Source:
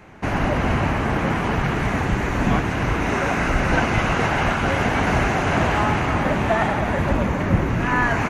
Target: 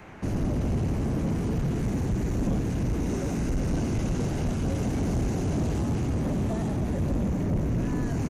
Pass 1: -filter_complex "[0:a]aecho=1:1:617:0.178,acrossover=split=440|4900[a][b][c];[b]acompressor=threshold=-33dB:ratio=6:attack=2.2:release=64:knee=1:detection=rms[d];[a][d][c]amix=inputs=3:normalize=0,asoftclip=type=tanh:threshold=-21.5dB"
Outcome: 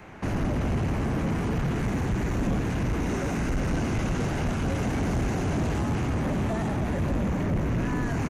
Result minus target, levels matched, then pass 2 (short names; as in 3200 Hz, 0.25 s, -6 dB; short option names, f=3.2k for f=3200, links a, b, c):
compressor: peak gain reduction -9.5 dB
-filter_complex "[0:a]aecho=1:1:617:0.178,acrossover=split=440|4900[a][b][c];[b]acompressor=threshold=-44.5dB:ratio=6:attack=2.2:release=64:knee=1:detection=rms[d];[a][d][c]amix=inputs=3:normalize=0,asoftclip=type=tanh:threshold=-21.5dB"